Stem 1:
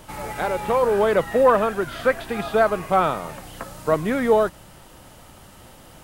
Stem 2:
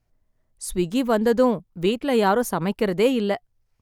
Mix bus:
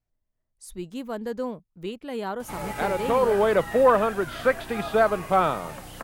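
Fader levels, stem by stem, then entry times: −2.0, −12.0 decibels; 2.40, 0.00 seconds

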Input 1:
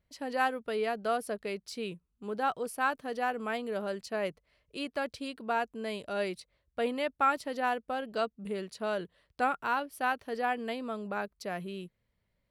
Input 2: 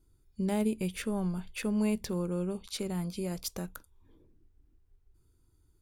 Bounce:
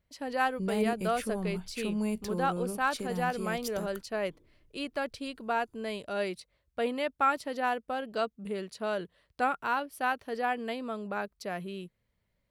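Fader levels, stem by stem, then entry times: +0.5, −2.5 decibels; 0.00, 0.20 seconds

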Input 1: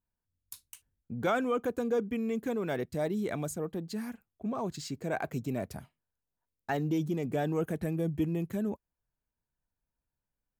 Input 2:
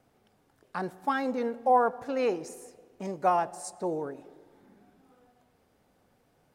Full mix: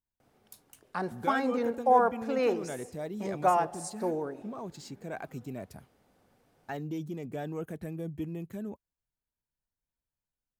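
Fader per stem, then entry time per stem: −6.0, 0.0 decibels; 0.00, 0.20 seconds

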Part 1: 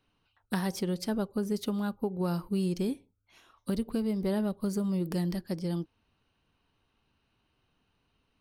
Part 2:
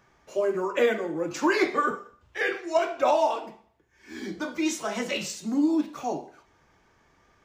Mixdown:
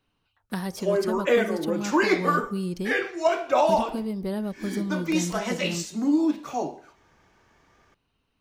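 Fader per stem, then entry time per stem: 0.0, +1.5 decibels; 0.00, 0.50 seconds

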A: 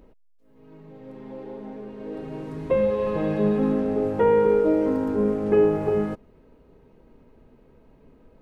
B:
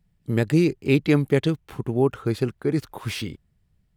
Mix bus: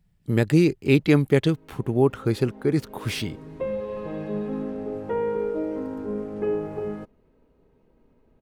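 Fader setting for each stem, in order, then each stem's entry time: −7.5, +1.0 decibels; 0.90, 0.00 seconds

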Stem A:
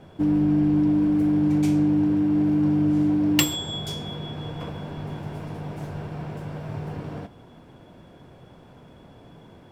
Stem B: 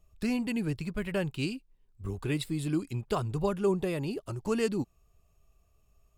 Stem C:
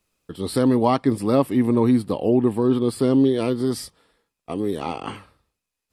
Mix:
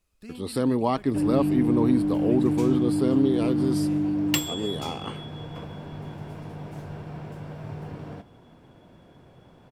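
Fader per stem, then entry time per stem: −4.0, −13.5, −5.5 decibels; 0.95, 0.00, 0.00 seconds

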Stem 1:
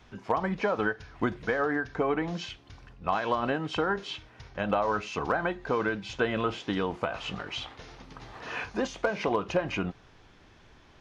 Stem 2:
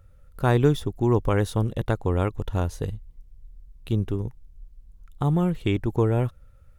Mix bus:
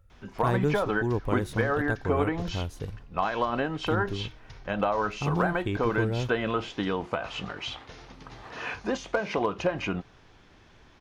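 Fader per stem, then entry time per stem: +0.5, −7.0 decibels; 0.10, 0.00 seconds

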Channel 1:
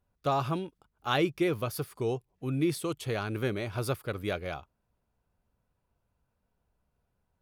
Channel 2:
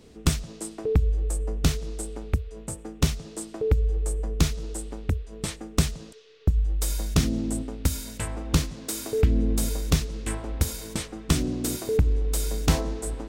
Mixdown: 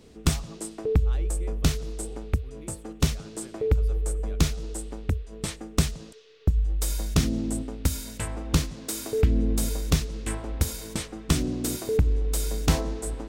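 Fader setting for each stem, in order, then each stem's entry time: −18.5, −0.5 decibels; 0.00, 0.00 seconds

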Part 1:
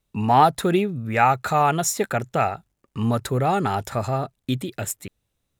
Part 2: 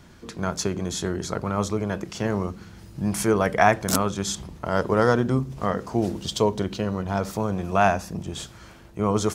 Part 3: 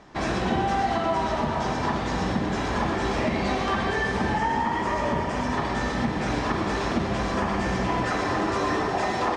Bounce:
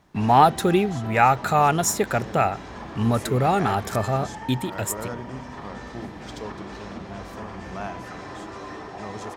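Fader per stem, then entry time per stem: +0.5, −15.0, −12.0 decibels; 0.00, 0.00, 0.00 seconds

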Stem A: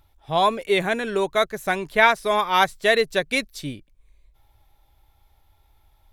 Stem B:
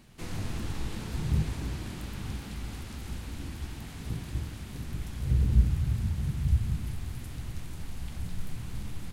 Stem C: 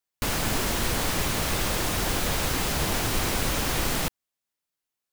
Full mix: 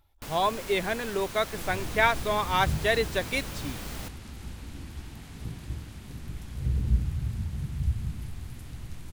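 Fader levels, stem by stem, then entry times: −6.5, −2.5, −13.5 decibels; 0.00, 1.35, 0.00 seconds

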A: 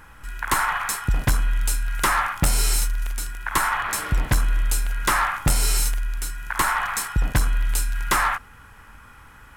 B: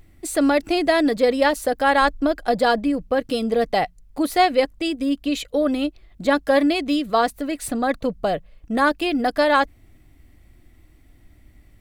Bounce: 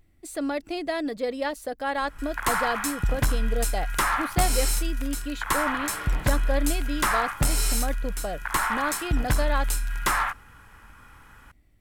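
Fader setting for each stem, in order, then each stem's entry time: −3.5, −10.5 decibels; 1.95, 0.00 seconds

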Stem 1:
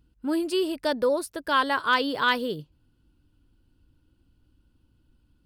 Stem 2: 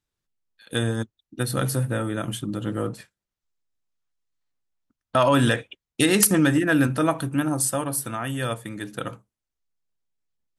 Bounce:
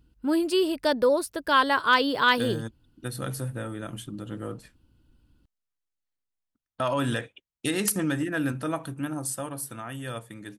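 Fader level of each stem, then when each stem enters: +2.0, −8.0 decibels; 0.00, 1.65 seconds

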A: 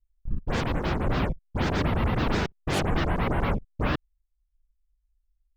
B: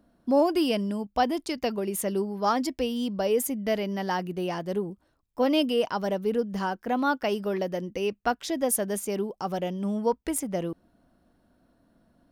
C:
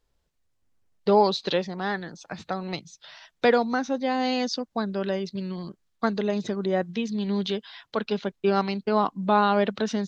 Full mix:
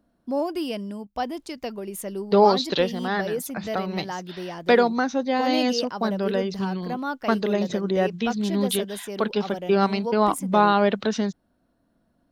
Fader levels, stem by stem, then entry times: muted, −4.0 dB, +2.5 dB; muted, 0.00 s, 1.25 s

